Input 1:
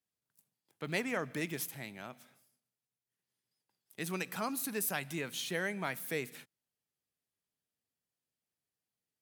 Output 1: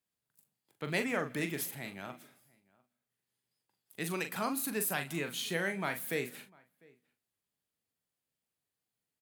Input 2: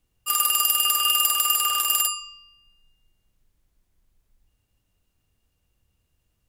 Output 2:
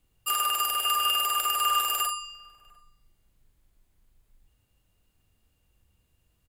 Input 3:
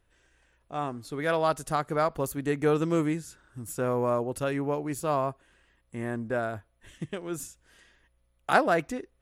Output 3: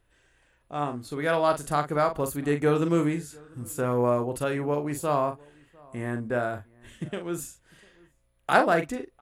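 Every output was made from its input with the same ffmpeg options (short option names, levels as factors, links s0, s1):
-filter_complex "[0:a]equalizer=f=5700:w=4.1:g=-4.5,acrossover=split=2500[s0][s1];[s1]acompressor=threshold=0.0282:ratio=6[s2];[s0][s2]amix=inputs=2:normalize=0,asplit=2[s3][s4];[s4]adelay=41,volume=0.398[s5];[s3][s5]amix=inputs=2:normalize=0,asplit=2[s6][s7];[s7]adelay=699.7,volume=0.0501,highshelf=f=4000:g=-15.7[s8];[s6][s8]amix=inputs=2:normalize=0,volume=1.19"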